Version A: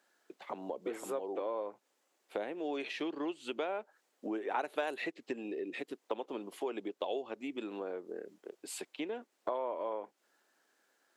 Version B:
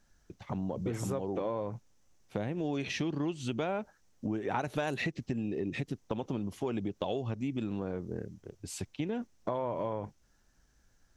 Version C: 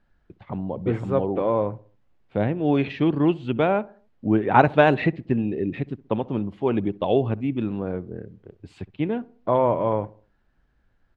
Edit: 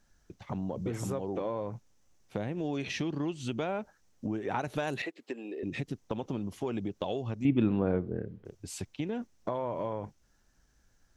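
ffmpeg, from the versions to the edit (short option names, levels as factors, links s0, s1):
-filter_complex "[1:a]asplit=3[s0][s1][s2];[s0]atrim=end=5.022[s3];[0:a]atrim=start=5.018:end=5.632[s4];[s1]atrim=start=5.628:end=7.452[s5];[2:a]atrim=start=7.448:end=8.452[s6];[s2]atrim=start=8.448[s7];[s3][s4]acrossfade=d=0.004:c1=hsin:c2=hsin[s8];[s8][s5]acrossfade=d=0.004:c1=hsin:c2=hsin[s9];[s9][s6]acrossfade=d=0.004:c1=hsin:c2=hsin[s10];[s10][s7]acrossfade=d=0.004:c1=hsin:c2=hsin"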